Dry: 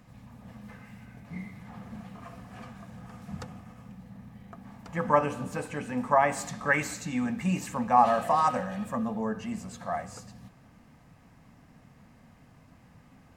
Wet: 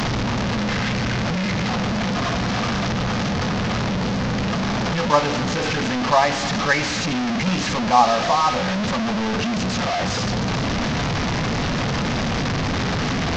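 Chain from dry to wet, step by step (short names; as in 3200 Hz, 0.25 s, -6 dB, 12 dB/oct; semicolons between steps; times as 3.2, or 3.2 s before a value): delta modulation 32 kbps, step -21.5 dBFS; gain +5.5 dB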